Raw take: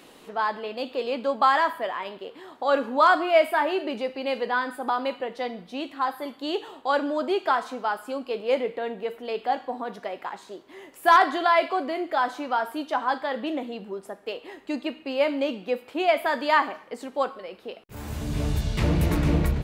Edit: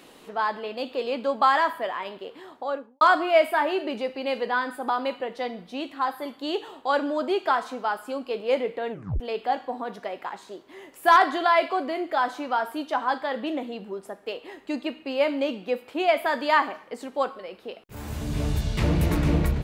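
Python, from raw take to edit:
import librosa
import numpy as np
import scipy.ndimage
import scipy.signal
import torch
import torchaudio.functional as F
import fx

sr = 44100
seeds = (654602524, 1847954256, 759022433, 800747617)

y = fx.studio_fade_out(x, sr, start_s=2.4, length_s=0.61)
y = fx.edit(y, sr, fx.tape_stop(start_s=8.91, length_s=0.29), tone=tone)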